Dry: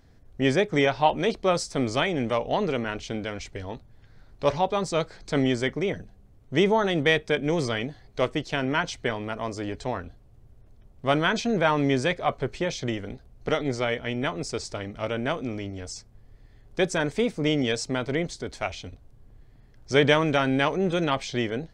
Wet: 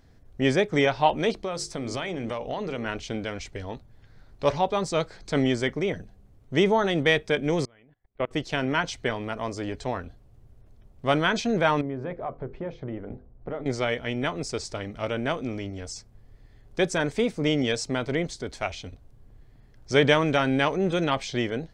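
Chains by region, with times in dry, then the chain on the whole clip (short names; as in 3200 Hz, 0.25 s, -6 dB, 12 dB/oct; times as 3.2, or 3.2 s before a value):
1.32–2.86 notches 50/100/150/200/250/300/350/400/450 Hz + compressor 10:1, threshold -26 dBFS
7.65–8.31 inverse Chebyshev low-pass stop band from 5500 Hz + level quantiser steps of 24 dB + upward expander, over -42 dBFS
11.81–13.66 LPF 1100 Hz + compressor 3:1, threshold -29 dBFS + notches 50/100/150/200/250/300/350/400/450/500 Hz
whole clip: dry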